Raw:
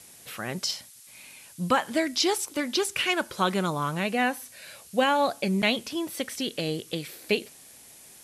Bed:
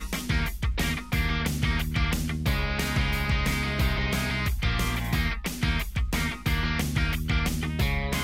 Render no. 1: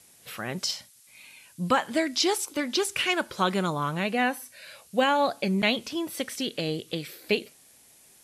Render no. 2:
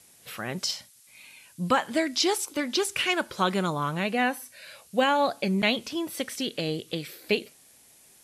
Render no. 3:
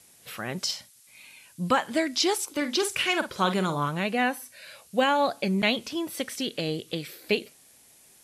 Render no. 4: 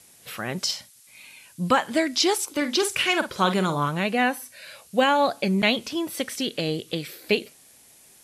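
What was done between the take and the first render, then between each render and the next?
noise print and reduce 6 dB
nothing audible
2.56–3.88 doubler 48 ms -9.5 dB
gain +3 dB

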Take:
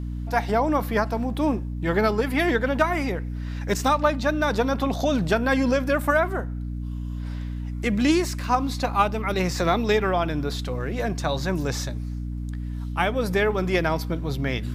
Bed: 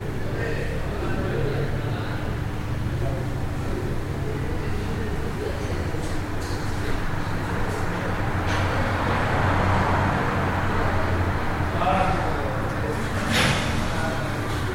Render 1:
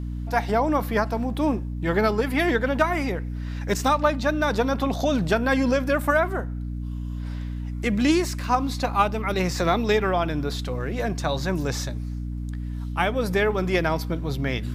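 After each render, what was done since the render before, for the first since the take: nothing audible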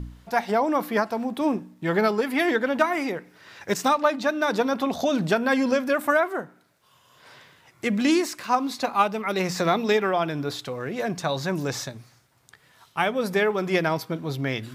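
de-hum 60 Hz, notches 5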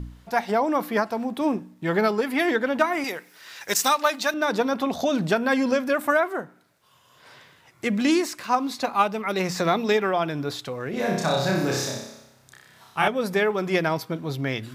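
3.04–4.34 tilt +3.5 dB/oct; 10.9–13.08 flutter echo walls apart 5.3 m, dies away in 0.84 s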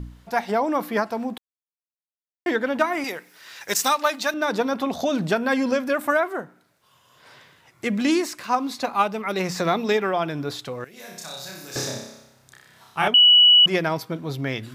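1.38–2.46 mute; 10.84–11.76 pre-emphasis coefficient 0.9; 13.14–13.66 bleep 2940 Hz -9.5 dBFS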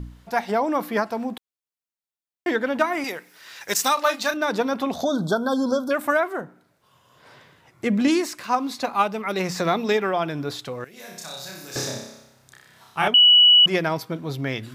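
3.94–4.37 doubler 32 ms -8 dB; 5.03–5.91 brick-wall FIR band-stop 1600–3200 Hz; 6.41–8.08 tilt shelf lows +3.5 dB, about 1200 Hz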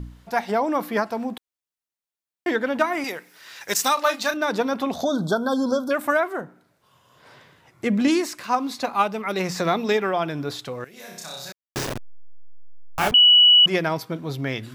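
11.52–13.12 level-crossing sampler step -22 dBFS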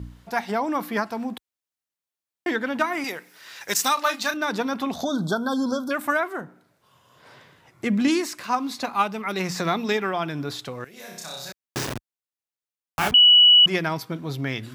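HPF 50 Hz; dynamic EQ 540 Hz, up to -6 dB, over -35 dBFS, Q 1.5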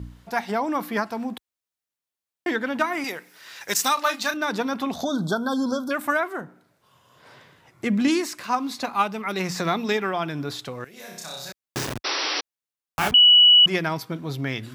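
12.04–12.41 painted sound noise 270–5900 Hz -26 dBFS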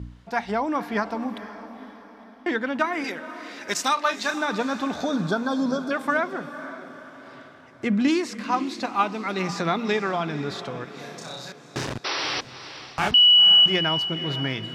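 air absorption 66 m; diffused feedback echo 0.495 s, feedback 47%, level -12.5 dB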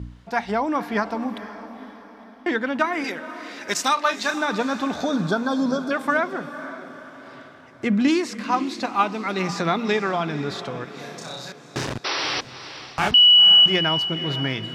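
gain +2 dB

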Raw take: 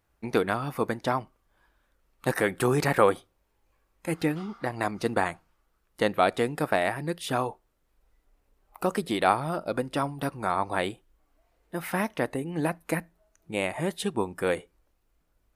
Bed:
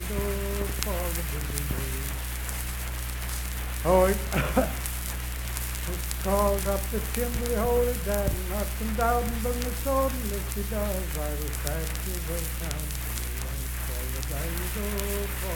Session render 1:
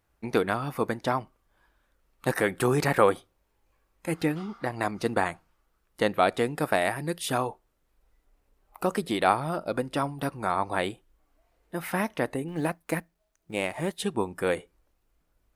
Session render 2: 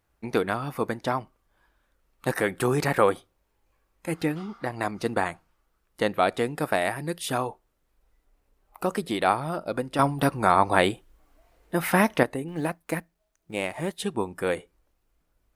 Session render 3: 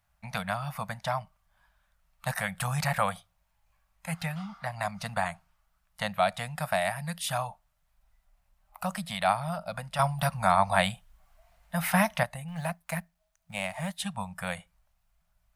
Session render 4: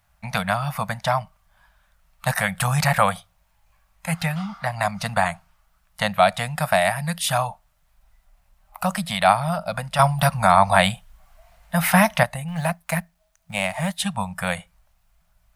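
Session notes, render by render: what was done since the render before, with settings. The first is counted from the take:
6.62–7.38 bell 11000 Hz +6 dB 1.8 oct; 12.48–13.99 G.711 law mismatch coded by A
9.99–12.23 gain +7.5 dB
Chebyshev band-stop 190–630 Hz, order 3; dynamic EQ 1300 Hz, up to -3 dB, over -36 dBFS, Q 0.78
gain +9 dB; limiter -2 dBFS, peak gain reduction 2.5 dB

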